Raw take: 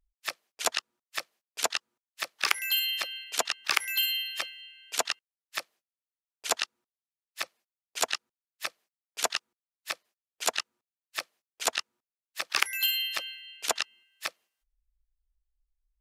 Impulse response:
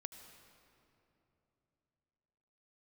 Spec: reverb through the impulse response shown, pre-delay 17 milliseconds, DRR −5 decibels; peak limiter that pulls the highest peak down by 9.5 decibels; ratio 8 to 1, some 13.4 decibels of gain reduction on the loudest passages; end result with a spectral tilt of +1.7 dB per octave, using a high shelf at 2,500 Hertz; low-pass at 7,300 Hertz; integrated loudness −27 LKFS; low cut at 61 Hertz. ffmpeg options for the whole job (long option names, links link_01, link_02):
-filter_complex "[0:a]highpass=61,lowpass=7300,highshelf=frequency=2500:gain=8,acompressor=threshold=-30dB:ratio=8,alimiter=limit=-23.5dB:level=0:latency=1,asplit=2[link_01][link_02];[1:a]atrim=start_sample=2205,adelay=17[link_03];[link_02][link_03]afir=irnorm=-1:irlink=0,volume=9dB[link_04];[link_01][link_04]amix=inputs=2:normalize=0,volume=5dB"